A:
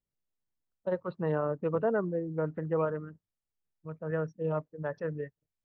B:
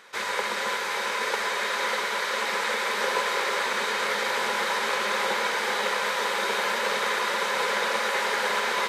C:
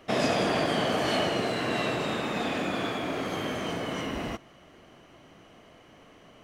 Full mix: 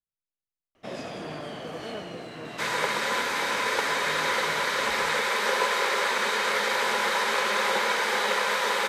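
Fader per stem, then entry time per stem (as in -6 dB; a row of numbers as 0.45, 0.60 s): -12.0, +1.0, -11.5 dB; 0.00, 2.45, 0.75 s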